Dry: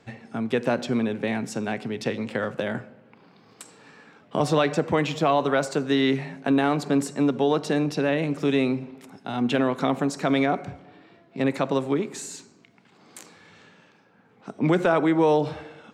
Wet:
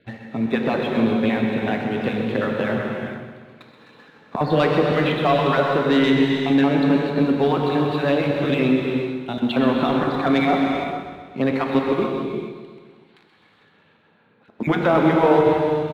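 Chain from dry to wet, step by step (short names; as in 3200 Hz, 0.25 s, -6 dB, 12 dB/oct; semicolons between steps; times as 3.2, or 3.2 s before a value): random spectral dropouts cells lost 26%; steep low-pass 4300 Hz 96 dB/oct; 12.07–14.6 compressor 6:1, threshold -54 dBFS, peak gain reduction 21 dB; sample leveller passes 1; feedback echo 0.128 s, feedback 60%, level -10 dB; non-linear reverb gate 0.48 s flat, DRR 0.5 dB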